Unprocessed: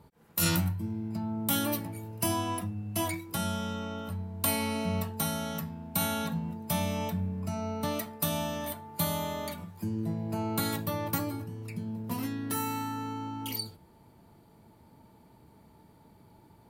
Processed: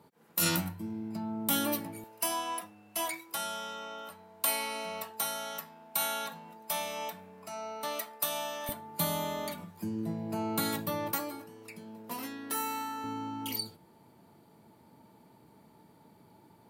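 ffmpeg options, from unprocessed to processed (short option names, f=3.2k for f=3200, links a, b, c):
-af "asetnsamples=n=441:p=0,asendcmd='2.04 highpass f 590;8.69 highpass f 170;11.12 highpass f 400;13.04 highpass f 150',highpass=200"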